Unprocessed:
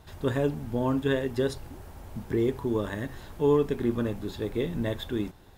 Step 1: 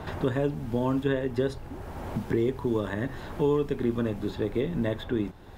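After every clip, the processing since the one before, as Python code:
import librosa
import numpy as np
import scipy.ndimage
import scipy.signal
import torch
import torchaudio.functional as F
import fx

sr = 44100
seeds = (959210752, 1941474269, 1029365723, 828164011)

y = fx.high_shelf(x, sr, hz=5200.0, db=-9.0)
y = fx.band_squash(y, sr, depth_pct=70)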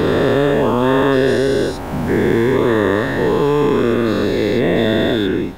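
y = fx.spec_dilate(x, sr, span_ms=480)
y = fx.low_shelf(y, sr, hz=210.0, db=-5.0)
y = y * 10.0 ** (7.5 / 20.0)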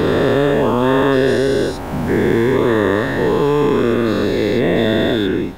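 y = x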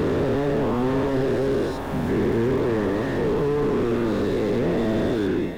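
y = x + 10.0 ** (-14.5 / 20.0) * np.pad(x, (int(788 * sr / 1000.0), 0))[:len(x)]
y = fx.slew_limit(y, sr, full_power_hz=78.0)
y = y * 10.0 ** (-5.0 / 20.0)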